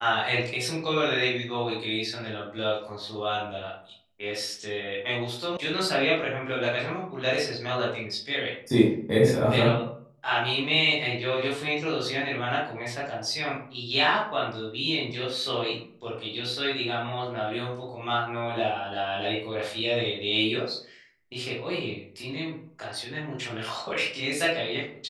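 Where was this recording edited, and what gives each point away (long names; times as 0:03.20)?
0:05.57: cut off before it has died away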